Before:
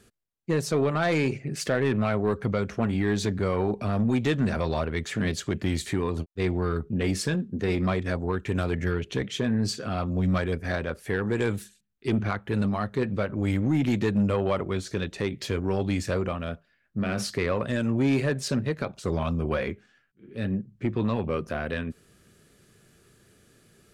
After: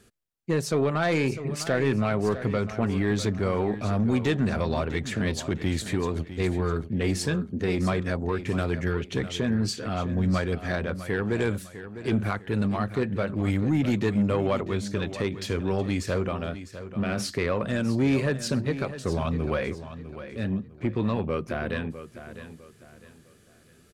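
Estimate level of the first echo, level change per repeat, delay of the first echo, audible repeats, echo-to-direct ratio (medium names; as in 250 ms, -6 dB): -12.5 dB, -9.5 dB, 653 ms, 3, -12.0 dB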